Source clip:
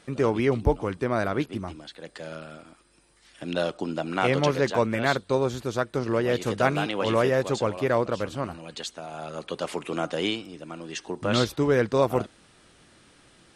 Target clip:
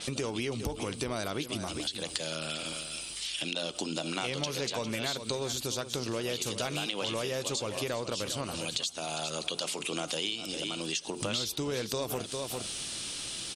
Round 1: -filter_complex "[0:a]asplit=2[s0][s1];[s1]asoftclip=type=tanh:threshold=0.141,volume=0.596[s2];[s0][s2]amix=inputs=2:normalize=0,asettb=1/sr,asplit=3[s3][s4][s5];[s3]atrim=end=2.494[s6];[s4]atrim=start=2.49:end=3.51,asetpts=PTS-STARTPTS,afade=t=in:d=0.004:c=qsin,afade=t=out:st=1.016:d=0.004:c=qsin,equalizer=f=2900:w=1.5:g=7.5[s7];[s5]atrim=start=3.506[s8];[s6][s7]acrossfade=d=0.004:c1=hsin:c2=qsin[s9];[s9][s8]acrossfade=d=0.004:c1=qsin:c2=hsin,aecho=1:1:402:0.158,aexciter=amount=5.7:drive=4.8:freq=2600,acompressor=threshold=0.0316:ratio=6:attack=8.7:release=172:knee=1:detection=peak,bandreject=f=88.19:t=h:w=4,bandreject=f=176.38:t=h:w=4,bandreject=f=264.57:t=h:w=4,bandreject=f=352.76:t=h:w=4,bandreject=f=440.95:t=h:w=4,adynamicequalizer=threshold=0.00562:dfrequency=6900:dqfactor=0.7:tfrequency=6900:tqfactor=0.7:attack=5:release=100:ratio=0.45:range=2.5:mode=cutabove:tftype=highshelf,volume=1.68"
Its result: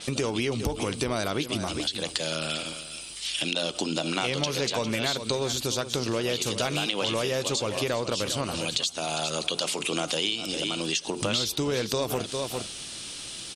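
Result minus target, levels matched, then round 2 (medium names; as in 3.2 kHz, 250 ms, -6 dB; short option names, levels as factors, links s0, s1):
compression: peak gain reduction -6 dB
-filter_complex "[0:a]asplit=2[s0][s1];[s1]asoftclip=type=tanh:threshold=0.141,volume=0.596[s2];[s0][s2]amix=inputs=2:normalize=0,asettb=1/sr,asplit=3[s3][s4][s5];[s3]atrim=end=2.494[s6];[s4]atrim=start=2.49:end=3.51,asetpts=PTS-STARTPTS,afade=t=in:d=0.004:c=qsin,afade=t=out:st=1.016:d=0.004:c=qsin,equalizer=f=2900:w=1.5:g=7.5[s7];[s5]atrim=start=3.506[s8];[s6][s7]acrossfade=d=0.004:c1=hsin:c2=qsin[s9];[s9][s8]acrossfade=d=0.004:c1=qsin:c2=hsin,aecho=1:1:402:0.158,aexciter=amount=5.7:drive=4.8:freq=2600,acompressor=threshold=0.0141:ratio=6:attack=8.7:release=172:knee=1:detection=peak,bandreject=f=88.19:t=h:w=4,bandreject=f=176.38:t=h:w=4,bandreject=f=264.57:t=h:w=4,bandreject=f=352.76:t=h:w=4,bandreject=f=440.95:t=h:w=4,adynamicequalizer=threshold=0.00562:dfrequency=6900:dqfactor=0.7:tfrequency=6900:tqfactor=0.7:attack=5:release=100:ratio=0.45:range=2.5:mode=cutabove:tftype=highshelf,volume=1.68"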